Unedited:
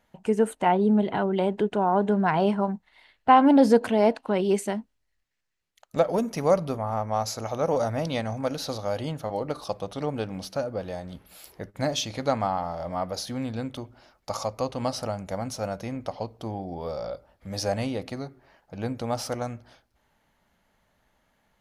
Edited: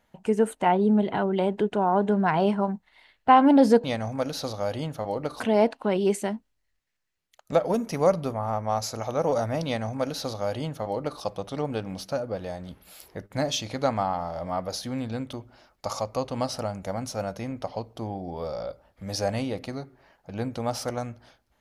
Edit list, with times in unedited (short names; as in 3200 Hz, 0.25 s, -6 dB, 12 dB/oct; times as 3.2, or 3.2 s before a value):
8.09–9.65 copy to 3.84